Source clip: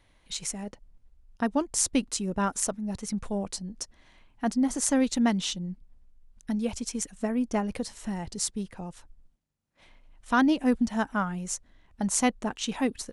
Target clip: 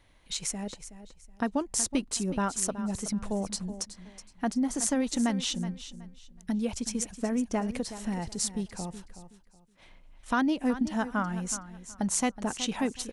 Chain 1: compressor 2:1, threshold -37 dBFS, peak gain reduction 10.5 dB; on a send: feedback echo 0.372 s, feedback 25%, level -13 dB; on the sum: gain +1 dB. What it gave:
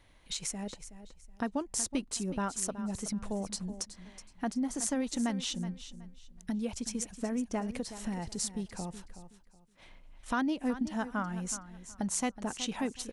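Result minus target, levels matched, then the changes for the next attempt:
compressor: peak gain reduction +4.5 dB
change: compressor 2:1, threshold -28 dBFS, peak gain reduction 6 dB

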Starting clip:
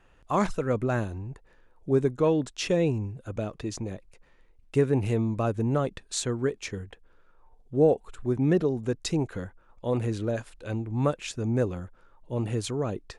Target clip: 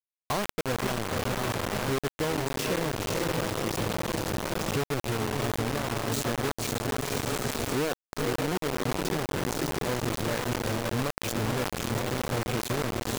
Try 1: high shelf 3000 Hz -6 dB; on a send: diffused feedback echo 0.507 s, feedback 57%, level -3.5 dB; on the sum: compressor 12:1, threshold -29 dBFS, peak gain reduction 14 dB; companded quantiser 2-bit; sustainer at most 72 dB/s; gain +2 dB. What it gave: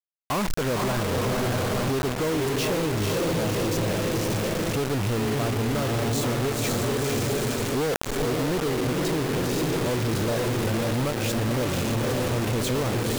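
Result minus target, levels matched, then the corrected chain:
compressor: peak gain reduction -8 dB
high shelf 3000 Hz -6 dB; on a send: diffused feedback echo 0.507 s, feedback 57%, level -3.5 dB; on the sum: compressor 12:1, threshold -38 dBFS, peak gain reduction 22.5 dB; companded quantiser 2-bit; sustainer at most 72 dB/s; gain +2 dB

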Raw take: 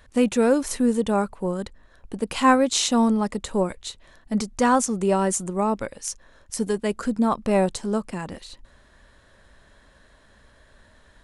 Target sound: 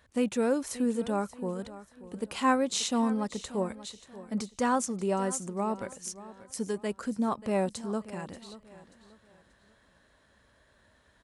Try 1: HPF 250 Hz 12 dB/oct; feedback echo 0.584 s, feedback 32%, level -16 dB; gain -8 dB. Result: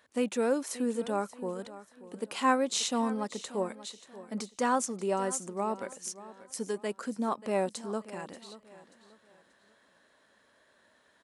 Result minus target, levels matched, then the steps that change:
125 Hz band -4.5 dB
change: HPF 65 Hz 12 dB/oct

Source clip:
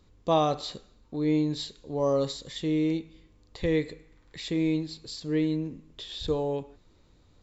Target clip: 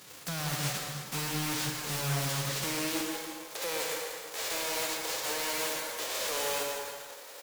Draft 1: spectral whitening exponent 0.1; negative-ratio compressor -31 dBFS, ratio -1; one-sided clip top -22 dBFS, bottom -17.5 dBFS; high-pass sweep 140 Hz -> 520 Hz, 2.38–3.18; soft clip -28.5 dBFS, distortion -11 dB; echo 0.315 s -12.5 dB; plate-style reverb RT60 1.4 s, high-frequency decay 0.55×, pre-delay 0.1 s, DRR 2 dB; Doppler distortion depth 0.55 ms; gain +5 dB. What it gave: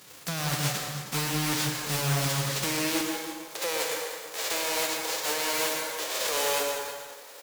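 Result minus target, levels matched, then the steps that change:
soft clip: distortion -5 dB
change: soft clip -36 dBFS, distortion -6 dB

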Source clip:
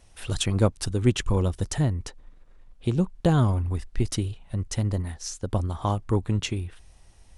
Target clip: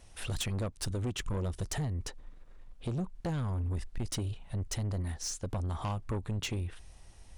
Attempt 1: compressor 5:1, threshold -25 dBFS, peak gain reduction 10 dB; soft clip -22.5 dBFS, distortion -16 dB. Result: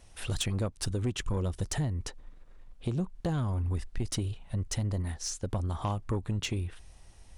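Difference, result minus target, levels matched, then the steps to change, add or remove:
soft clip: distortion -6 dB
change: soft clip -29 dBFS, distortion -10 dB

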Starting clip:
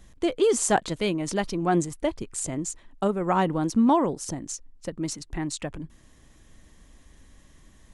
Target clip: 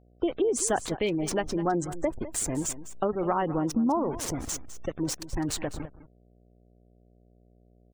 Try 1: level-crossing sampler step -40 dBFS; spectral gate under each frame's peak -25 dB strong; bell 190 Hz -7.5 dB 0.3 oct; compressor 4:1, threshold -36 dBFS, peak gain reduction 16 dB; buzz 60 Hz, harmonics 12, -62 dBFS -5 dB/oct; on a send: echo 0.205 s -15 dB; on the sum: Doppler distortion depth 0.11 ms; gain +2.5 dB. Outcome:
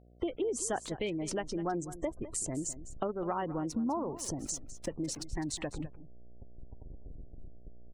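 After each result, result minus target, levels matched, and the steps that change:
compressor: peak gain reduction +7.5 dB; level-crossing sampler: distortion -7 dB
change: compressor 4:1, threshold -26 dBFS, peak gain reduction 8.5 dB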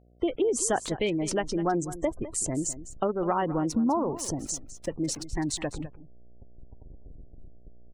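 level-crossing sampler: distortion -7 dB
change: level-crossing sampler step -32 dBFS

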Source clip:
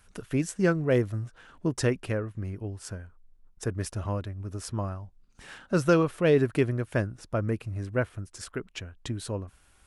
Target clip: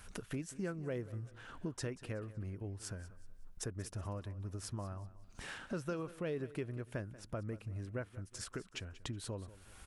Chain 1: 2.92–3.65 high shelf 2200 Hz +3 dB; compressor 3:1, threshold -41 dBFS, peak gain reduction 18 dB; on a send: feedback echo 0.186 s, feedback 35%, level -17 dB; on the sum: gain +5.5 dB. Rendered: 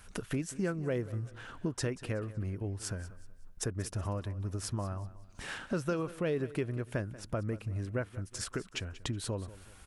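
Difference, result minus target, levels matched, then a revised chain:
compressor: peak gain reduction -6.5 dB
2.92–3.65 high shelf 2200 Hz +3 dB; compressor 3:1, threshold -51 dBFS, peak gain reduction 25 dB; on a send: feedback echo 0.186 s, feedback 35%, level -17 dB; on the sum: gain +5.5 dB

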